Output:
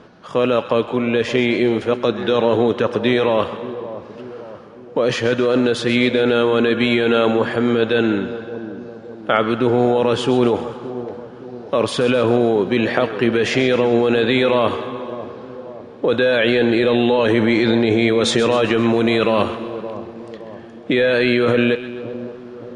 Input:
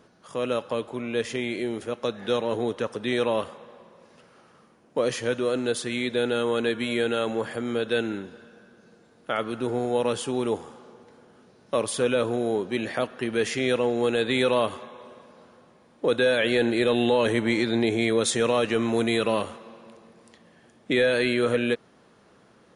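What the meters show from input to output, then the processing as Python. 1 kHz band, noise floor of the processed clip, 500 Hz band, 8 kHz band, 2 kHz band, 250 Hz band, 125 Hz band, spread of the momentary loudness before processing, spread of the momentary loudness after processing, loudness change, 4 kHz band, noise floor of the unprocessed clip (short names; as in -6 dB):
+9.0 dB, -38 dBFS, +8.0 dB, -0.5 dB, +7.5 dB, +9.5 dB, +10.0 dB, 8 LU, 17 LU, +8.0 dB, +7.0 dB, -58 dBFS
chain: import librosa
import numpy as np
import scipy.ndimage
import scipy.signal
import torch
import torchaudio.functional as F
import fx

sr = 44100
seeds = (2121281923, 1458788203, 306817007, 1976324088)

p1 = scipy.signal.sosfilt(scipy.signal.butter(2, 3900.0, 'lowpass', fs=sr, output='sos'), x)
p2 = fx.peak_eq(p1, sr, hz=2000.0, db=-2.5, octaves=0.25)
p3 = fx.over_compress(p2, sr, threshold_db=-27.0, ratio=-0.5)
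p4 = p2 + (p3 * 10.0 ** (1.0 / 20.0))
p5 = fx.echo_split(p4, sr, split_hz=940.0, low_ms=569, high_ms=130, feedback_pct=52, wet_db=-13.0)
y = p5 * 10.0 ** (4.0 / 20.0)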